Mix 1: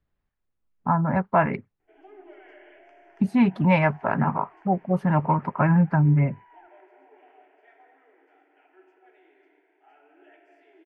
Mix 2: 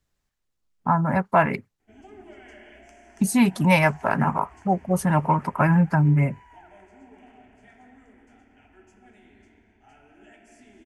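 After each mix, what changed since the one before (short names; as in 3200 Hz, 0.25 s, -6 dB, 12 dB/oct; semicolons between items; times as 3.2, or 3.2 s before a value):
background: remove brick-wall FIR high-pass 290 Hz; master: remove air absorption 400 m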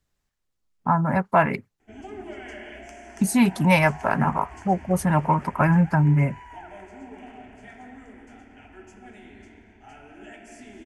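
background +8.0 dB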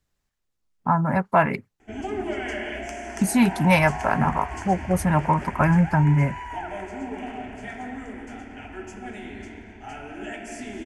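background +9.0 dB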